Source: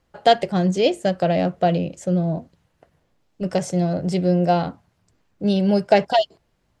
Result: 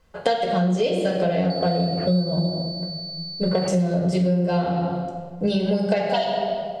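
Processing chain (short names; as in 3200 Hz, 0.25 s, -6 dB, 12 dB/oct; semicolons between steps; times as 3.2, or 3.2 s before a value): reverb RT60 1.5 s, pre-delay 4 ms, DRR -1.5 dB; compressor 10:1, threshold -21 dBFS, peak gain reduction 15.5 dB; 1.5–3.68 pulse-width modulation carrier 4500 Hz; gain +3 dB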